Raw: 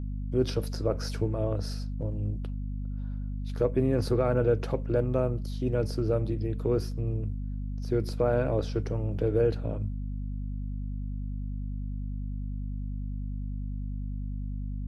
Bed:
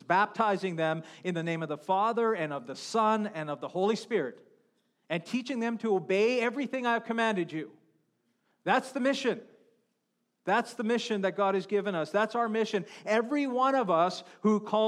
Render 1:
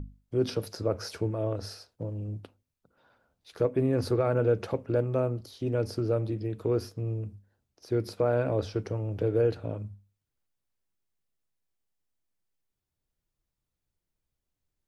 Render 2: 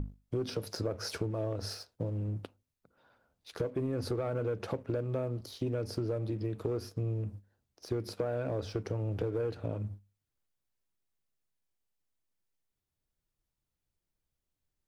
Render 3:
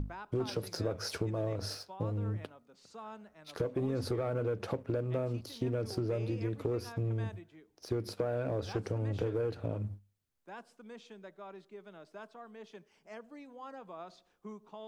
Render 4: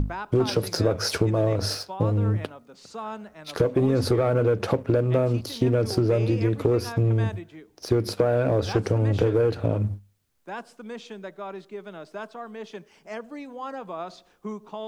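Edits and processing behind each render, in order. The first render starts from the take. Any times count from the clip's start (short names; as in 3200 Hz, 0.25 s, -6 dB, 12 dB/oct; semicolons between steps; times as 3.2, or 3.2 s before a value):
notches 50/100/150/200/250 Hz
sample leveller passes 1; compressor 6:1, threshold -31 dBFS, peak gain reduction 12 dB
add bed -21 dB
gain +12 dB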